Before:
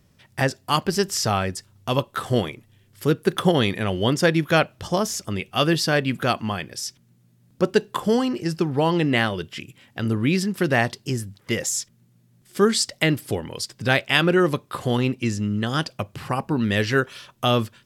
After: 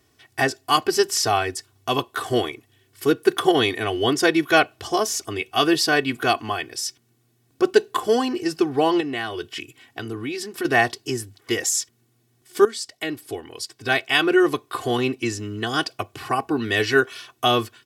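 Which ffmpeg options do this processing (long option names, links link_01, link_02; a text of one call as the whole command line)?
ffmpeg -i in.wav -filter_complex "[0:a]asettb=1/sr,asplit=3[link_01][link_02][link_03];[link_01]atrim=end=9.004[link_04];[link_02]atrim=start=9:end=10.65,asetpts=PTS-STARTPTS,afade=type=in:duration=0.004:curve=qsin,afade=type=out:start_time=1.646:duration=0.004:curve=qsin,acompressor=threshold=-26dB:ratio=3:attack=3.2:release=140:knee=1:detection=peak[link_05];[link_03]atrim=start=10.646[link_06];[link_04][link_05]acrossfade=duration=0.004:curve1=hsin:curve2=qsin[link_07];[link_07][link_06]acrossfade=duration=0.004:curve1=qsin:curve2=hsin,asplit=2[link_08][link_09];[link_08]atrim=end=12.65,asetpts=PTS-STARTPTS,afade=type=out:start_time=12.646:duration=0.004:curve=hsin:silence=0.223872[link_10];[link_09]atrim=start=12.65,asetpts=PTS-STARTPTS,afade=type=in:duration=2.19:silence=0.223872[link_11];[link_10][link_11]concat=n=2:v=0:a=1,highpass=frequency=240:poles=1,aecho=1:1:2.7:0.97" out.wav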